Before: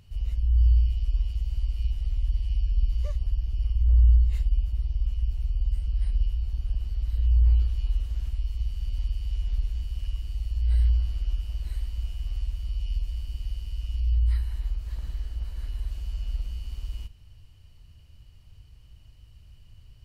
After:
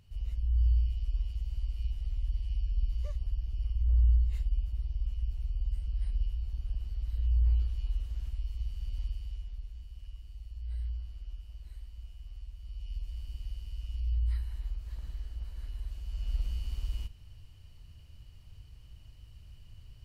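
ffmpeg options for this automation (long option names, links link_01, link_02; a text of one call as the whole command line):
ffmpeg -i in.wav -af "volume=7.5dB,afade=type=out:start_time=9.06:duration=0.47:silence=0.398107,afade=type=in:start_time=12.55:duration=0.71:silence=0.421697,afade=type=in:start_time=16.05:duration=0.4:silence=0.473151" out.wav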